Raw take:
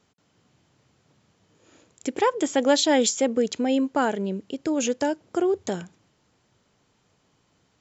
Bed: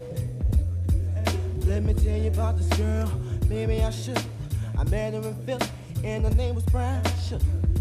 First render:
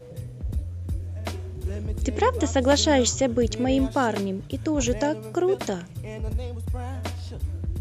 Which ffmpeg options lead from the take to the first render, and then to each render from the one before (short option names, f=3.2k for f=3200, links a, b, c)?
-filter_complex "[1:a]volume=-6.5dB[a];[0:a][a]amix=inputs=2:normalize=0"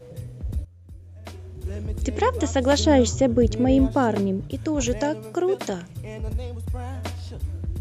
-filter_complex "[0:a]asettb=1/sr,asplit=3[a][b][c];[a]atrim=end=2.794[d];[b]atrim=start=2.79:end=4.51,asetpts=PTS-STARTPTS,afade=t=in:d=0.004:c=qsin,afade=t=out:st=1.716:d=0.004:c=qsin,tiltshelf=f=970:g=5[e];[c]atrim=start=4.506[f];[d][e]acrossfade=d=0.004:c1=hsin:c2=qsin[g];[g][f]acrossfade=d=0.004:c1=qsin:c2=hsin,asettb=1/sr,asplit=3[h][i][j];[h]atrim=end=5.244[k];[i]atrim=start=5.24:end=5.7,asetpts=PTS-STARTPTS,afade=t=in:d=0.004:c=qsin,afade=t=out:st=0.456:d=0.004:c=qsin,highpass=150[l];[j]atrim=start=5.696[m];[k][l]acrossfade=d=0.004:c1=hsin:c2=qsin[n];[n][m]acrossfade=d=0.004:c1=qsin:c2=hsin,asplit=2[o][p];[o]atrim=end=0.65,asetpts=PTS-STARTPTS,afade=t=out:st=0.646:d=0.004:c=hsin:silence=0.158489[q];[p]atrim=start=0.65,asetpts=PTS-STARTPTS,afade=t=in:d=1.14:c=qua:silence=0.158489[r];[q][r]concat=n=2:v=0:a=1"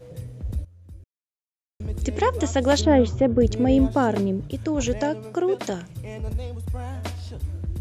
-filter_complex "[0:a]asettb=1/sr,asplit=3[a][b][c];[a]atrim=end=2.814[d];[b]atrim=start=2.81:end=3.41,asetpts=PTS-STARTPTS,afade=t=in:d=0.004:c=qsin,afade=t=out:st=0.596:d=0.004:c=qsin,lowpass=2.5k[e];[c]atrim=start=3.406[f];[d][e]acrossfade=d=0.004:c1=hsin:c2=qsin[g];[g][f]acrossfade=d=0.004:c1=qsin:c2=hsin,asettb=1/sr,asplit=3[h][i][j];[h]atrim=end=4.634[k];[i]atrim=start=4.63:end=5.64,asetpts=PTS-STARTPTS,afade=t=in:d=0.004:c=qsin,afade=t=out:st=1.006:d=0.004:c=qsin,highshelf=f=9.8k:g=-11.5[l];[j]atrim=start=5.636[m];[k][l]acrossfade=d=0.004:c1=hsin:c2=qsin[n];[n][m]acrossfade=d=0.004:c1=qsin:c2=hsin,asplit=3[o][p][q];[o]atrim=end=1.04,asetpts=PTS-STARTPTS,afade=t=out:st=1.036:d=0.004:c=hsin[r];[p]atrim=start=1.04:end=1.8,asetpts=PTS-STARTPTS,volume=0[s];[q]atrim=start=1.8,asetpts=PTS-STARTPTS,afade=t=in:d=0.004:c=hsin[t];[r][s][t]concat=n=3:v=0:a=1"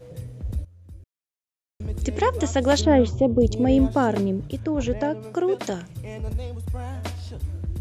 -filter_complex "[0:a]asplit=3[a][b][c];[a]afade=t=out:st=3.1:d=0.02[d];[b]asuperstop=centerf=1700:order=4:qfactor=1.1,afade=t=in:st=3.1:d=0.02,afade=t=out:st=3.62:d=0.02[e];[c]afade=t=in:st=3.62:d=0.02[f];[d][e][f]amix=inputs=3:normalize=0,asettb=1/sr,asplit=3[g][h][i];[g]atrim=end=4.594[j];[h]atrim=start=4.59:end=5.21,asetpts=PTS-STARTPTS,afade=t=in:d=0.004:c=qsin,afade=t=out:st=0.616:d=0.004:c=qsin,aemphasis=mode=reproduction:type=75kf[k];[i]atrim=start=5.206[l];[j][k]acrossfade=d=0.004:c1=hsin:c2=qsin[m];[m][l]acrossfade=d=0.004:c1=qsin:c2=hsin"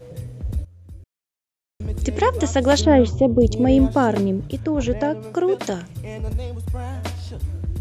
-af "volume=3dB"